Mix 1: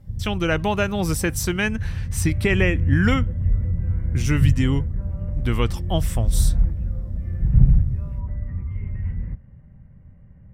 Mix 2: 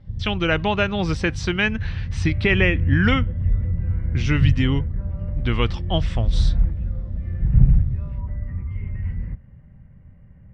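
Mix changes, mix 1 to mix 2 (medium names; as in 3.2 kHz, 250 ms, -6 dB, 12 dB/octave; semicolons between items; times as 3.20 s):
speech: add low-pass 4.1 kHz 24 dB/octave; master: add treble shelf 2.5 kHz +8 dB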